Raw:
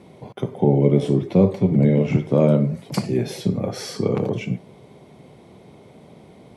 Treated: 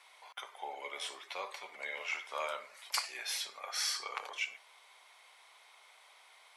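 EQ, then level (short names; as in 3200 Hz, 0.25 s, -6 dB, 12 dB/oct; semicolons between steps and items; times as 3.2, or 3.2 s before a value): HPF 1100 Hz 24 dB/oct; 0.0 dB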